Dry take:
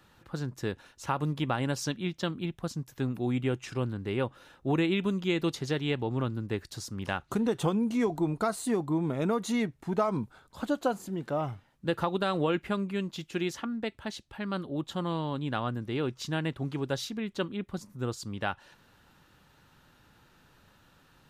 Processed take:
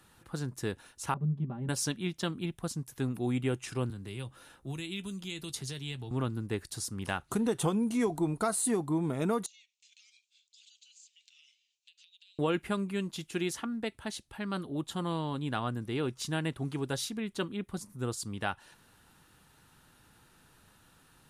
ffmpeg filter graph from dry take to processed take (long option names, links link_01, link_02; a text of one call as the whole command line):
ffmpeg -i in.wav -filter_complex "[0:a]asettb=1/sr,asplit=3[link_01][link_02][link_03];[link_01]atrim=end=1.144[link_04];[link_02]atrim=start=1.14:end=1.69,asetpts=PTS-STARTPTS,afade=type=in:duration=0.004:curve=qsin,afade=type=out:start_time=0.546:duration=0.004:curve=qsin,bandpass=frequency=160:width_type=q:width=1.7,aecho=1:1:5.1:0.98,atrim=end_sample=24255[link_05];[link_03]atrim=start=1.686[link_06];[link_04][link_05]acrossfade=duration=0.004:curve1=hsin:curve2=qsin[link_07];[link_07][link_06]acrossfade=duration=0.004:curve1=qsin:curve2=hsin,asettb=1/sr,asplit=3[link_08][link_09][link_10];[link_08]atrim=end=3.904[link_11];[link_09]atrim=start=3.9:end=6.11,asetpts=PTS-STARTPTS,afade=type=in:duration=0.004:curve=qsin,afade=type=out:start_time=2.206:duration=0.004:curve=qsin,acrossover=split=130|3000[link_12][link_13][link_14];[link_13]acompressor=threshold=-44dB:ratio=4:attack=3.2:release=140:knee=2.83:detection=peak[link_15];[link_12][link_15][link_14]amix=inputs=3:normalize=0,asplit=2[link_16][link_17];[link_17]adelay=15,volume=-12dB[link_18];[link_16][link_18]amix=inputs=2:normalize=0,atrim=end_sample=97461[link_19];[link_10]atrim=start=6.106[link_20];[link_11][link_19]acrossfade=duration=0.004:curve1=hsin:curve2=qsin[link_21];[link_21][link_20]acrossfade=duration=0.004:curve1=qsin:curve2=hsin,asettb=1/sr,asplit=3[link_22][link_23][link_24];[link_22]atrim=end=9.464[link_25];[link_23]atrim=start=9.46:end=12.39,asetpts=PTS-STARTPTS,afade=type=in:duration=0.004:curve=qsin,afade=type=out:start_time=2.926:duration=0.004:curve=qsin,asuperpass=centerf=4300:order=12:qfactor=0.89,acompressor=threshold=-55dB:ratio=10:attack=3.2:release=140:knee=1:detection=peak[link_26];[link_24]atrim=start=12.386[link_27];[link_25][link_26]acrossfade=duration=0.004:curve1=hsin:curve2=qsin[link_28];[link_28][link_27]acrossfade=duration=0.004:curve1=qsin:curve2=hsin,equalizer=frequency=9800:width_type=o:width=0.68:gain=13.5,bandreject=frequency=560:width=12,volume=-1.5dB" out.wav